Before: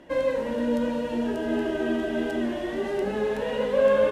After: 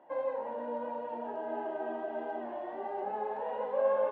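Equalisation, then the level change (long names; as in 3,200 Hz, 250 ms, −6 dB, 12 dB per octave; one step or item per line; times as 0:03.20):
resonant band-pass 820 Hz, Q 4.7
high-frequency loss of the air 110 metres
+4.0 dB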